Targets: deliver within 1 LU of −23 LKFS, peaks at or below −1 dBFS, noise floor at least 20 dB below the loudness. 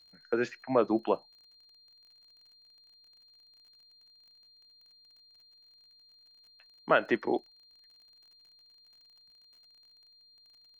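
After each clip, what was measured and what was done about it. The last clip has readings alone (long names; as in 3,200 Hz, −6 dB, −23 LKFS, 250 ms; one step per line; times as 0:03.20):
crackle rate 37 per second; interfering tone 4,200 Hz; level of the tone −58 dBFS; integrated loudness −30.0 LKFS; sample peak −11.5 dBFS; target loudness −23.0 LKFS
→ click removal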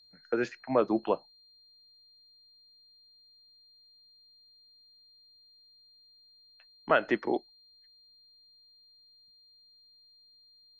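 crackle rate 0 per second; interfering tone 4,200 Hz; level of the tone −58 dBFS
→ notch filter 4,200 Hz, Q 30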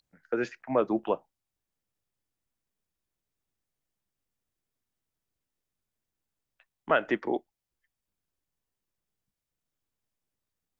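interfering tone none found; integrated loudness −30.0 LKFS; sample peak −11.5 dBFS; target loudness −23.0 LKFS
→ level +7 dB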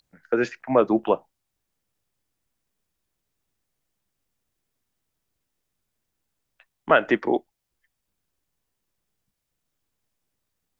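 integrated loudness −23.0 LKFS; sample peak −4.5 dBFS; background noise floor −80 dBFS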